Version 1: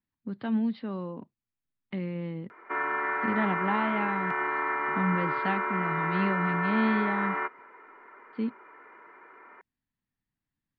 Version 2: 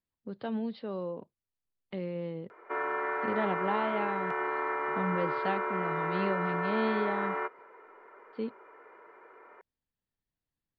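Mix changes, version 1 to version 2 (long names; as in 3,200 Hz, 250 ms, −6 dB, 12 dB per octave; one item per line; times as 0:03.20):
speech: remove high-frequency loss of the air 53 metres
master: add octave-band graphic EQ 125/250/500/1,000/2,000 Hz −4/−8/+7/−3/−6 dB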